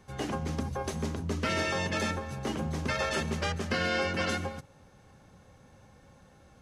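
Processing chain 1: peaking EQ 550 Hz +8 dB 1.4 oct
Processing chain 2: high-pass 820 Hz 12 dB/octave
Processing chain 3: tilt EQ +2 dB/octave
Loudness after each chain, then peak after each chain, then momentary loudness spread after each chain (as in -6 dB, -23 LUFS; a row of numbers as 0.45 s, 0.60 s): -28.5 LUFS, -34.5 LUFS, -31.0 LUFS; -12.5 dBFS, -18.5 dBFS, -16.5 dBFS; 6 LU, 12 LU, 9 LU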